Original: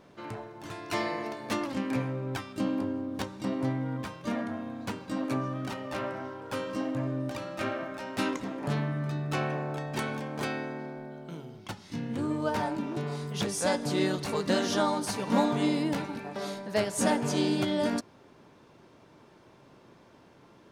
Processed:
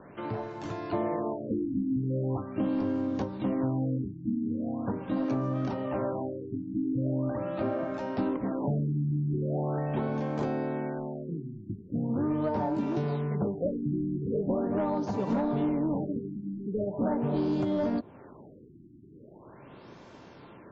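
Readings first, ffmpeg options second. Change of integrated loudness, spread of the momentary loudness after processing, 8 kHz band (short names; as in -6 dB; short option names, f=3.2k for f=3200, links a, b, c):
+0.5 dB, 9 LU, under -20 dB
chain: -filter_complex "[0:a]acrossover=split=960[a][b];[b]acompressor=threshold=-49dB:ratio=10[c];[a][c]amix=inputs=2:normalize=0,asoftclip=type=tanh:threshold=-23dB,acrossover=split=87|1300[d][e][f];[d]acompressor=threshold=-54dB:ratio=4[g];[e]acompressor=threshold=-32dB:ratio=4[h];[f]acompressor=threshold=-55dB:ratio=4[i];[g][h][i]amix=inputs=3:normalize=0,afftfilt=real='re*lt(b*sr/1024,350*pow(7800/350,0.5+0.5*sin(2*PI*0.41*pts/sr)))':imag='im*lt(b*sr/1024,350*pow(7800/350,0.5+0.5*sin(2*PI*0.41*pts/sr)))':win_size=1024:overlap=0.75,volume=6.5dB"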